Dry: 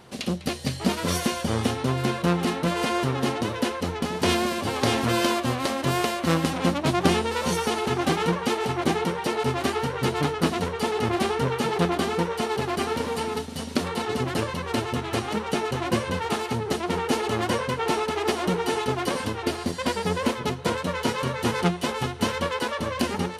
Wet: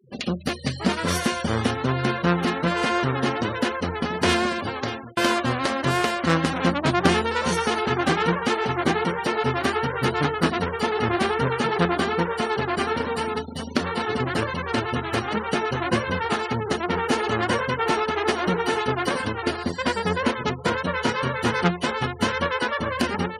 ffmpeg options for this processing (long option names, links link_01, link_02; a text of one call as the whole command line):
ffmpeg -i in.wav -filter_complex "[0:a]asplit=2[link_01][link_02];[link_01]atrim=end=5.17,asetpts=PTS-STARTPTS,afade=type=out:start_time=4.47:duration=0.7[link_03];[link_02]atrim=start=5.17,asetpts=PTS-STARTPTS,afade=type=in:duration=0.004:curve=hsin[link_04];[link_03][link_04]concat=n=2:v=0:a=1,afftfilt=real='re*gte(hypot(re,im),0.0158)':imag='im*gte(hypot(re,im),0.0158)':win_size=1024:overlap=0.75,equalizer=frequency=1600:width_type=o:width=0.86:gain=6,volume=1dB" out.wav